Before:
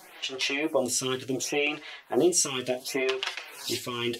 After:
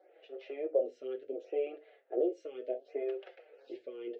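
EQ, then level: ladder band-pass 570 Hz, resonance 55%; air absorption 120 m; fixed phaser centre 420 Hz, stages 4; +4.0 dB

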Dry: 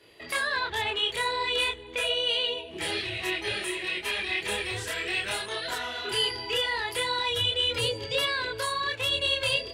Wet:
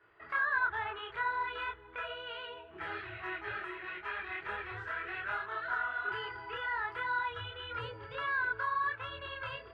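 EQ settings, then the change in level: synth low-pass 1400 Hz, resonance Q 5.4; bell 230 Hz -10 dB 0.79 oct; bell 520 Hz -9 dB 0.32 oct; -8.5 dB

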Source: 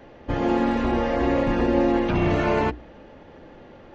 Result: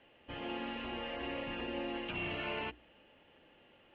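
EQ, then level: band-pass 2900 Hz, Q 6.1; air absorption 99 m; tilt -4.5 dB/oct; +7.5 dB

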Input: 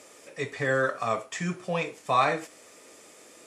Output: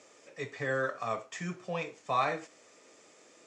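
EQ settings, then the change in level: elliptic band-pass 100–7000 Hz, stop band 50 dB; -6.0 dB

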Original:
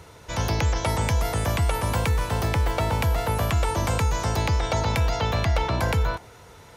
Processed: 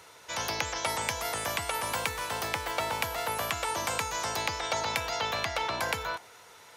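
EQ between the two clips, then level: HPF 1100 Hz 6 dB/oct; 0.0 dB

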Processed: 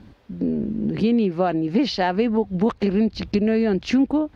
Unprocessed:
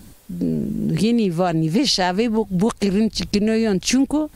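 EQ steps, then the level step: HPF 49 Hz; air absorption 280 m; bell 160 Hz -10 dB 0.24 oct; 0.0 dB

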